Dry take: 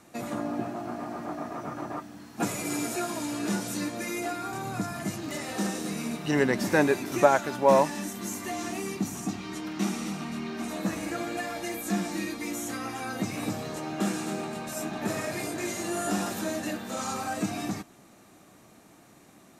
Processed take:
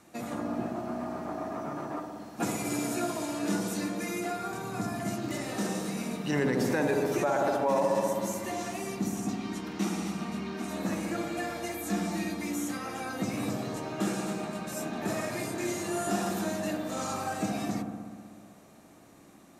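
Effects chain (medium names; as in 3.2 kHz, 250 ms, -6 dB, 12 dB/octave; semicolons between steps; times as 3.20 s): feedback echo behind a low-pass 62 ms, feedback 79%, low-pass 980 Hz, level -4 dB; peak limiter -15.5 dBFS, peak gain reduction 10.5 dB; trim -2.5 dB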